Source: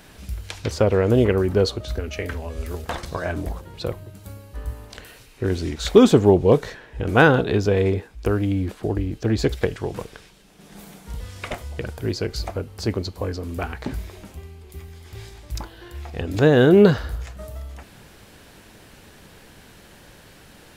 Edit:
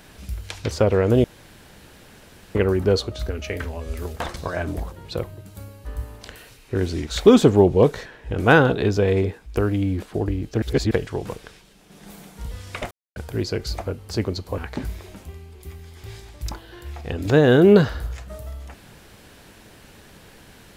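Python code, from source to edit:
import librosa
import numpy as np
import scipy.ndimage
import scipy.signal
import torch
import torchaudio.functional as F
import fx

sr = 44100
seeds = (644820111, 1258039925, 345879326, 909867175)

y = fx.edit(x, sr, fx.insert_room_tone(at_s=1.24, length_s=1.31),
    fx.reverse_span(start_s=9.31, length_s=0.29),
    fx.silence(start_s=11.6, length_s=0.25),
    fx.cut(start_s=13.27, length_s=0.4), tone=tone)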